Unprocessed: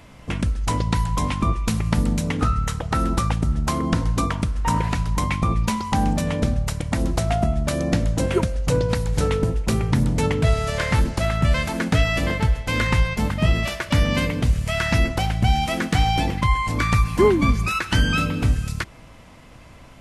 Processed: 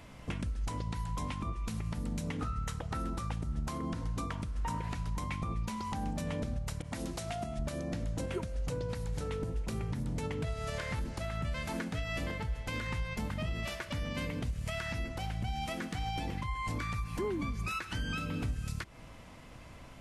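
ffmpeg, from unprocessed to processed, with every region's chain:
-filter_complex "[0:a]asettb=1/sr,asplit=3[a][b][c];[a]atrim=end=6.824[d];[b]atrim=start=6.82:end=7.59,asetpts=PTS-STARTPTS,afade=t=in:d=0.004:c=qsin,afade=t=out:st=0.766:d=0.004:c=qsin,highpass=f=150:p=1,adynamicequalizer=threshold=0.00891:dfrequency=2000:dqfactor=0.7:tfrequency=2000:tqfactor=0.7:attack=5:release=100:ratio=0.375:range=3:mode=boostabove:tftype=highshelf[e];[c]atrim=start=7.586[f];[d][e]acrossfade=d=0.004:c1=hsin:c2=qsin[g];[g][f]acrossfade=d=0.004:c1=qsin:c2=hsin,acompressor=threshold=-31dB:ratio=1.5,alimiter=limit=-21dB:level=0:latency=1:release=201,volume=-5.5dB"

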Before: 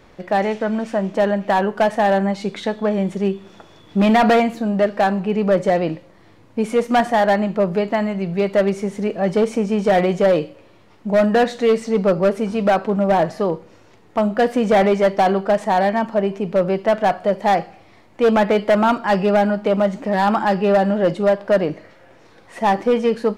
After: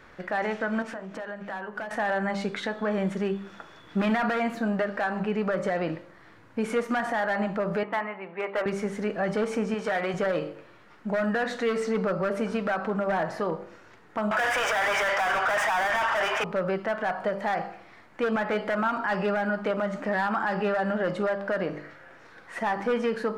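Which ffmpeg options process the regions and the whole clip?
-filter_complex "[0:a]asettb=1/sr,asplit=3[a][b][c];[a]atrim=end=0.824[d];[b]atrim=start=0.82:end=1.91,asetpts=PTS-STARTPTS,afade=t=in:d=0.004:c=qsin,afade=t=out:st=1.086:d=0.004:c=qsin,bandreject=f=50:t=h:w=6,bandreject=f=100:t=h:w=6,bandreject=f=150:t=h:w=6,bandreject=f=200:t=h:w=6,bandreject=f=250:t=h:w=6,bandreject=f=300:t=h:w=6,bandreject=f=350:t=h:w=6,bandreject=f=400:t=h:w=6,bandreject=f=450:t=h:w=6,acompressor=threshold=-29dB:ratio=12:attack=3.2:release=140:knee=1:detection=peak[e];[c]atrim=start=1.906[f];[d][e]acrossfade=d=0.004:c1=hsin:c2=qsin[g];[g][f]acrossfade=d=0.004:c1=qsin:c2=hsin,asettb=1/sr,asplit=3[h][i][j];[h]atrim=end=7.834[k];[i]atrim=start=7.83:end=8.66,asetpts=PTS-STARTPTS,afade=t=in:d=0.004:c=qsin,afade=t=out:st=0.826:d=0.004:c=qsin,highpass=f=310:w=0.5412,highpass=f=310:w=1.3066,equalizer=f=380:t=q:w=4:g=-7,equalizer=f=630:t=q:w=4:g=-7,equalizer=f=940:t=q:w=4:g=4,equalizer=f=1.5k:t=q:w=4:g=-9,lowpass=f=2.5k:w=0.5412,lowpass=f=2.5k:w=1.3066,asoftclip=type=hard:threshold=-18dB[l];[j]atrim=start=8.656[m];[k][l]acrossfade=d=0.004:c1=hsin:c2=qsin[n];[n][m]acrossfade=d=0.004:c1=qsin:c2=hsin,asettb=1/sr,asplit=3[o][p][q];[o]atrim=end=9.744[r];[p]atrim=start=9.74:end=10.14,asetpts=PTS-STARTPTS,afade=t=in:d=0.004:c=qsin,afade=t=out:st=0.396:d=0.004:c=qsin,lowshelf=f=360:g=-9.5,asoftclip=type=hard:threshold=-10.5dB[s];[q]atrim=start=10.136[t];[r][s]acrossfade=d=0.004:c1=hsin:c2=qsin[u];[u][t]acrossfade=d=0.004:c1=qsin:c2=hsin,asettb=1/sr,asplit=3[v][w][x];[v]atrim=end=14.314[y];[w]atrim=start=14.31:end=16.44,asetpts=PTS-STARTPTS,afade=t=in:d=0.004:c=qsin,afade=t=out:st=2.126:d=0.004:c=qsin,highpass=f=650:w=0.5412,highpass=f=650:w=1.3066,asplit=2[z][aa];[aa]highpass=f=720:p=1,volume=38dB,asoftclip=type=tanh:threshold=-8.5dB[ab];[z][ab]amix=inputs=2:normalize=0,lowpass=f=4k:p=1,volume=-6dB,bandreject=f=4.2k:w=5[ac];[x]atrim=start=16.436[ad];[y][ac]acrossfade=d=0.004:c1=hsin:c2=qsin[ae];[ae][ad]acrossfade=d=0.004:c1=qsin:c2=hsin,equalizer=f=1.5k:t=o:w=1:g=11.5,bandreject=f=49.54:t=h:w=4,bandreject=f=99.08:t=h:w=4,bandreject=f=148.62:t=h:w=4,bandreject=f=198.16:t=h:w=4,bandreject=f=247.7:t=h:w=4,bandreject=f=297.24:t=h:w=4,bandreject=f=346.78:t=h:w=4,bandreject=f=396.32:t=h:w=4,bandreject=f=445.86:t=h:w=4,bandreject=f=495.4:t=h:w=4,bandreject=f=544.94:t=h:w=4,bandreject=f=594.48:t=h:w=4,bandreject=f=644.02:t=h:w=4,bandreject=f=693.56:t=h:w=4,bandreject=f=743.1:t=h:w=4,bandreject=f=792.64:t=h:w=4,bandreject=f=842.18:t=h:w=4,bandreject=f=891.72:t=h:w=4,bandreject=f=941.26:t=h:w=4,bandreject=f=990.8:t=h:w=4,bandreject=f=1.04034k:t=h:w=4,bandreject=f=1.08988k:t=h:w=4,bandreject=f=1.13942k:t=h:w=4,bandreject=f=1.18896k:t=h:w=4,bandreject=f=1.2385k:t=h:w=4,bandreject=f=1.28804k:t=h:w=4,bandreject=f=1.33758k:t=h:w=4,alimiter=limit=-12.5dB:level=0:latency=1:release=114,volume=-5.5dB"

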